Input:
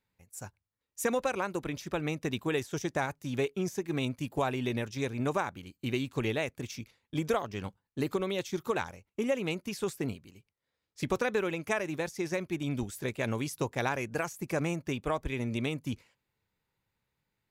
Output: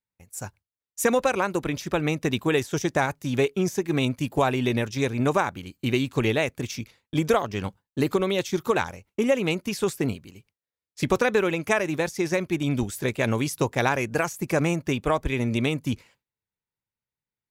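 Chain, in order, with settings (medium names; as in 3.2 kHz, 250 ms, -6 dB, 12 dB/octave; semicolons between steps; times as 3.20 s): gate with hold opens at -58 dBFS; trim +8 dB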